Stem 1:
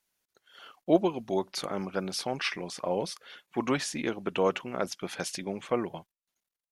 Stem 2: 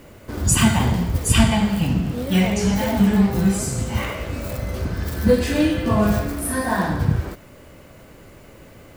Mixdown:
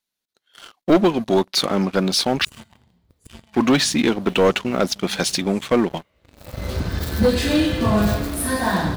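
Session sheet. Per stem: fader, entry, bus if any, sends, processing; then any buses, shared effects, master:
+0.5 dB, 0.00 s, muted 0:02.45–0:03.48, no send, parametric band 230 Hz +5.5 dB 0.83 octaves
−10.5 dB, 1.95 s, no send, automatic ducking −24 dB, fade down 1.00 s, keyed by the first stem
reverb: not used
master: parametric band 3,900 Hz +8 dB 0.56 octaves; leveller curve on the samples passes 3

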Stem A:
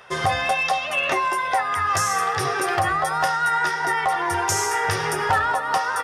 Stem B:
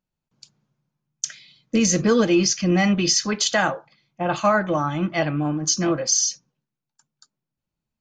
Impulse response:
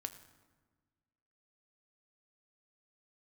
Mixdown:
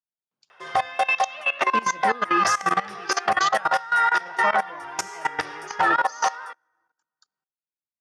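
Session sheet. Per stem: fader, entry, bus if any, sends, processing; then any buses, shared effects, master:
+3.0 dB, 0.50 s, send −20.5 dB, no processing
−4.0 dB, 0.00 s, send −14.5 dB, no processing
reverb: on, RT60 1.4 s, pre-delay 5 ms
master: meter weighting curve A; output level in coarse steps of 18 dB; high-shelf EQ 5,700 Hz −11.5 dB

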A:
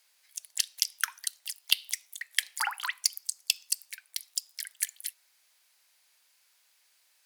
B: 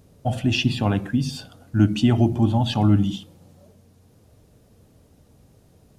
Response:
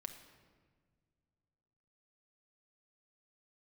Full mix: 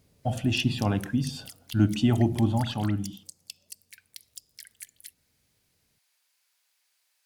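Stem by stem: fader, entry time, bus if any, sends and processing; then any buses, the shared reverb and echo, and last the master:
−5.5 dB, 0.00 s, no send, downward compressor 6 to 1, threshold −34 dBFS, peak gain reduction 16 dB
0:02.51 −4.5 dB → 0:03.20 −15 dB, 0.00 s, no send, noise gate −42 dBFS, range −7 dB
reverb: not used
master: no processing

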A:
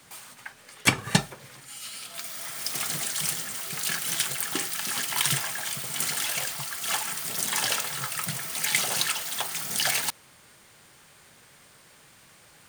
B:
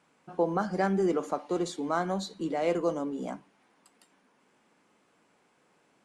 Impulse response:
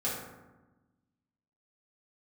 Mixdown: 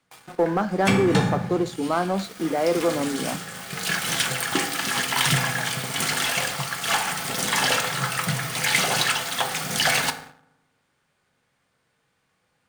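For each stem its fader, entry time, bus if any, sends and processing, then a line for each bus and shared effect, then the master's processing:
0.0 dB, 0.00 s, send −11 dB, noise gate −49 dBFS, range −12 dB; automatic ducking −13 dB, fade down 0.25 s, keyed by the second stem
−1.0 dB, 0.00 s, no send, bit reduction 9 bits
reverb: on, RT60 1.1 s, pre-delay 3 ms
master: low-pass filter 3,000 Hz 6 dB per octave; leveller curve on the samples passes 2

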